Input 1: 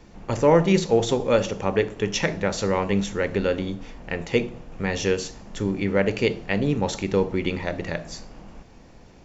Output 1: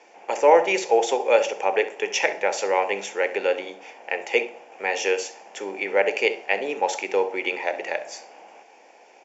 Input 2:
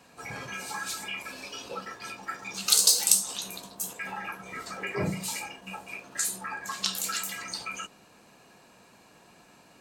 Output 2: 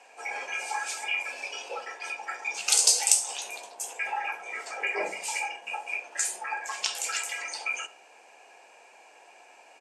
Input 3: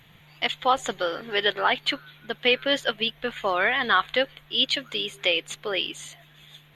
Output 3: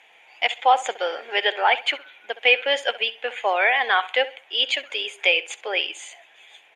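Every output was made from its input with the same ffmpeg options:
ffmpeg -i in.wav -filter_complex "[0:a]highpass=frequency=430:width=0.5412,highpass=frequency=430:width=1.3066,equalizer=frequency=800:width_type=q:width=4:gain=8,equalizer=frequency=1200:width_type=q:width=4:gain=-8,equalizer=frequency=2400:width_type=q:width=4:gain=7,equalizer=frequency=4000:width_type=q:width=4:gain=-10,lowpass=frequency=9200:width=0.5412,lowpass=frequency=9200:width=1.3066,asplit=2[link_01][link_02];[link_02]adelay=66,lowpass=frequency=4200:poles=1,volume=-16dB,asplit=2[link_03][link_04];[link_04]adelay=66,lowpass=frequency=4200:poles=1,volume=0.28,asplit=2[link_05][link_06];[link_06]adelay=66,lowpass=frequency=4200:poles=1,volume=0.28[link_07];[link_03][link_05][link_07]amix=inputs=3:normalize=0[link_08];[link_01][link_08]amix=inputs=2:normalize=0,volume=2dB" out.wav

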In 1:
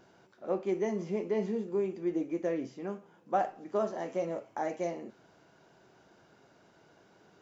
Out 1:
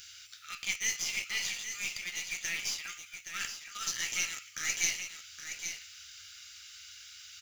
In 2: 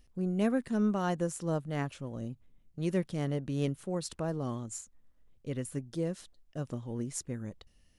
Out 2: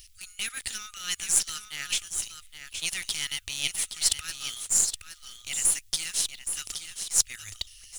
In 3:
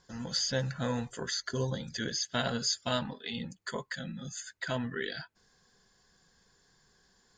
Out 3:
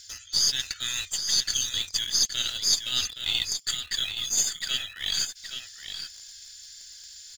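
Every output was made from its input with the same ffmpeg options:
ffmpeg -i in.wav -filter_complex "[0:a]afftfilt=real='re*(1-between(b*sr/4096,100,1200))':imag='im*(1-between(b*sr/4096,100,1200))':win_size=4096:overlap=0.75,adynamicequalizer=threshold=0.00178:dfrequency=3400:dqfactor=5.2:tfrequency=3400:tqfactor=5.2:attack=5:release=100:ratio=0.375:range=1.5:mode=boostabove:tftype=bell,areverse,acompressor=threshold=-47dB:ratio=10,areverse,aexciter=amount=7.9:drive=3.2:freq=2200,asplit=2[link_01][link_02];[link_02]acrusher=bits=4:dc=4:mix=0:aa=0.000001,volume=-6.5dB[link_03];[link_01][link_03]amix=inputs=2:normalize=0,aecho=1:1:820:0.376,volume=5.5dB" out.wav

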